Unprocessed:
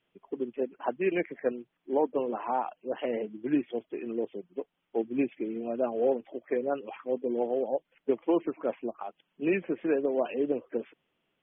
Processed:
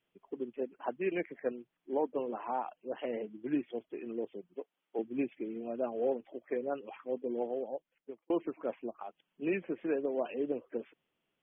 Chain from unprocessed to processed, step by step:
0:04.54–0:04.99: high-pass filter 290 Hz 12 dB per octave
0:07.42–0:08.30: fade out
level −5.5 dB

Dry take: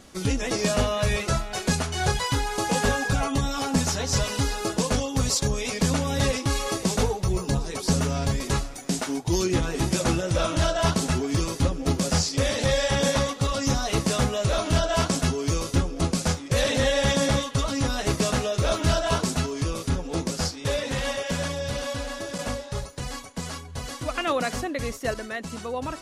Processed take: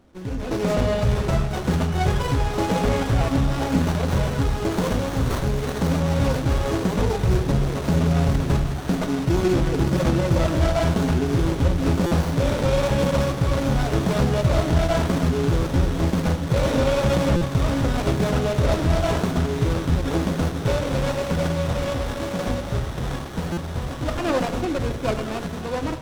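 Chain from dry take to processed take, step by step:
delay with a high-pass on its return 994 ms, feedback 82%, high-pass 2,200 Hz, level −5 dB
in parallel at −7 dB: decimation without filtering 30×
on the sum: high-frequency loss of the air 55 metres
brickwall limiter −13.5 dBFS, peak gain reduction 5 dB
0:04.71–0:06.00: high-shelf EQ 6,000 Hz +10 dB
automatic gain control gain up to 11.5 dB
on a send at −9 dB: convolution reverb RT60 1.1 s, pre-delay 3 ms
on the sum: buffer that repeats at 0:12.06/0:17.36/0:23.52, samples 256, times 8
windowed peak hold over 17 samples
level −8 dB

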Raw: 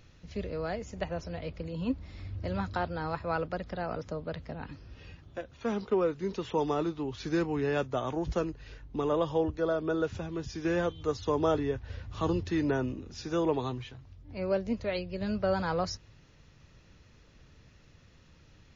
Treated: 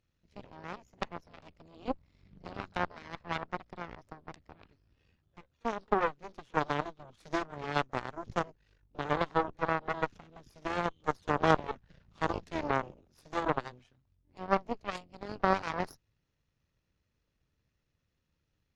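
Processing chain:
echo ahead of the sound 38 ms −20 dB
harmonic generator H 2 −7 dB, 3 −11 dB, 7 −30 dB, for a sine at −15.5 dBFS
dynamic equaliser 1,100 Hz, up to +5 dB, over −44 dBFS, Q 0.77
level +2 dB

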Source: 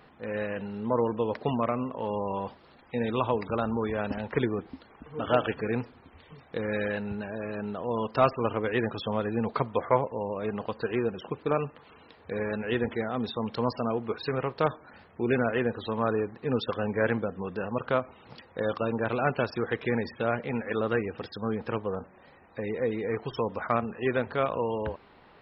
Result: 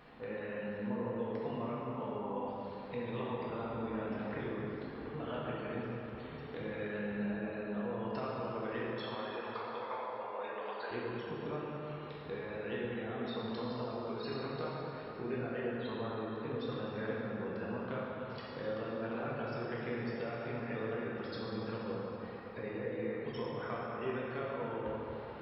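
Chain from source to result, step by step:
0:08.87–0:10.91: high-pass filter 710 Hz 12 dB per octave
downward compressor 4 to 1, threshold −41 dBFS, peak gain reduction 20.5 dB
dense smooth reverb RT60 3.7 s, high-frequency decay 0.7×, DRR −6 dB
level −3.5 dB

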